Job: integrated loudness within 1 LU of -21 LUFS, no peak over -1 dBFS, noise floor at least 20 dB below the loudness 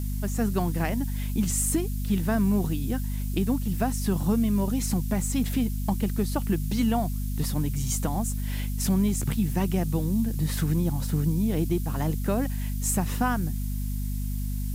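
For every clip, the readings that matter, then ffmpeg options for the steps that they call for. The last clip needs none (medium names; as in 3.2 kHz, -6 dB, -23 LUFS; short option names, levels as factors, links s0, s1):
hum 50 Hz; highest harmonic 250 Hz; hum level -27 dBFS; noise floor -29 dBFS; noise floor target -47 dBFS; loudness -27.0 LUFS; peak level -12.5 dBFS; loudness target -21.0 LUFS
-> -af "bandreject=f=50:t=h:w=4,bandreject=f=100:t=h:w=4,bandreject=f=150:t=h:w=4,bandreject=f=200:t=h:w=4,bandreject=f=250:t=h:w=4"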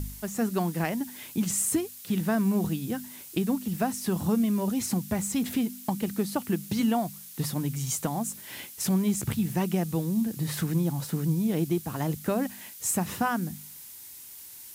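hum not found; noise floor -45 dBFS; noise floor target -49 dBFS
-> -af "afftdn=nr=6:nf=-45"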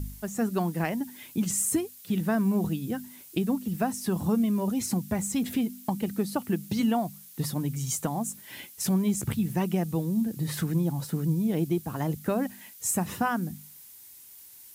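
noise floor -50 dBFS; loudness -29.0 LUFS; peak level -14.0 dBFS; loudness target -21.0 LUFS
-> -af "volume=2.51"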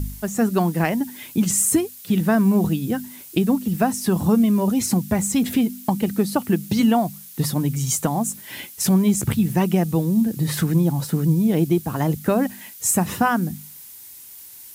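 loudness -21.0 LUFS; peak level -6.0 dBFS; noise floor -42 dBFS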